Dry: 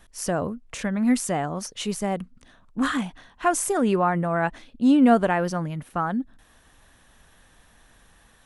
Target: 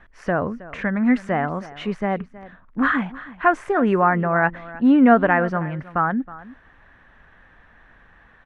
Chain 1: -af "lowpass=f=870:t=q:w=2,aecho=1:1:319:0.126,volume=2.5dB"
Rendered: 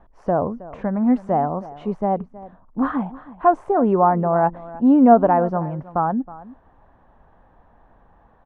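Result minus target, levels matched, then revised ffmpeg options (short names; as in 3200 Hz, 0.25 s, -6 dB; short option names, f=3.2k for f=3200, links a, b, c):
2000 Hz band -15.0 dB
-af "lowpass=f=1.8k:t=q:w=2,aecho=1:1:319:0.126,volume=2.5dB"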